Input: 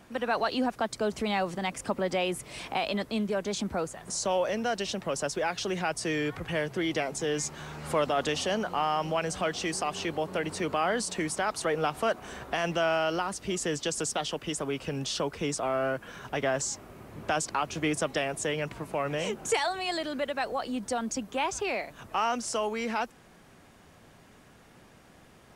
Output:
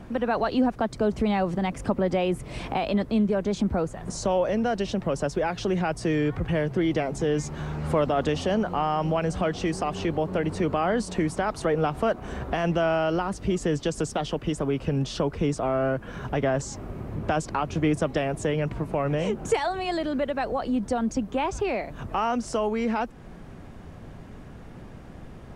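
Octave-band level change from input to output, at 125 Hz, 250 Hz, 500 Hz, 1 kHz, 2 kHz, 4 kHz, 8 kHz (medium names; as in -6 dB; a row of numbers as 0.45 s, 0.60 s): +10.0 dB, +7.5 dB, +4.5 dB, +2.5 dB, -1.0 dB, -3.5 dB, -6.0 dB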